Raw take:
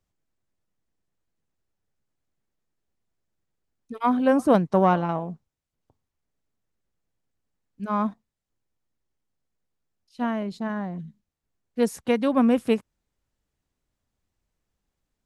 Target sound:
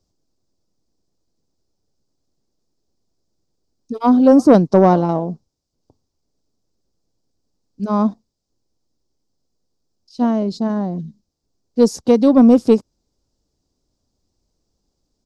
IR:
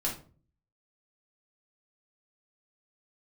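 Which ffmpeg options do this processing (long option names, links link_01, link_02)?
-af "firequalizer=gain_entry='entry(160,0);entry(290,5);entry(1800,-14);entry(3000,-8);entry(4900,9);entry(10000,-9)':delay=0.05:min_phase=1,acontrast=64,volume=1.5dB"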